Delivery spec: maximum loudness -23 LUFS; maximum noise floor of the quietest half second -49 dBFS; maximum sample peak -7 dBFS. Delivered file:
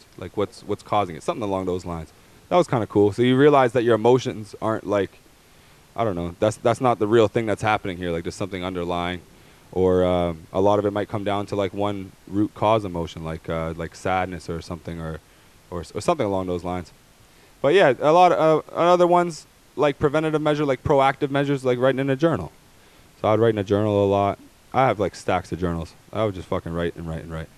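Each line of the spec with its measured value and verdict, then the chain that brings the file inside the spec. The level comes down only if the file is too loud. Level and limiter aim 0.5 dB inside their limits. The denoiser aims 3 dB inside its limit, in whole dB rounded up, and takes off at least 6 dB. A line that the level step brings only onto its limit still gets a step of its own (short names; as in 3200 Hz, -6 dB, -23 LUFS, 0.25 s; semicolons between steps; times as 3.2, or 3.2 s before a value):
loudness -22.0 LUFS: fail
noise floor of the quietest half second -52 dBFS: OK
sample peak -4.0 dBFS: fail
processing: gain -1.5 dB; limiter -7.5 dBFS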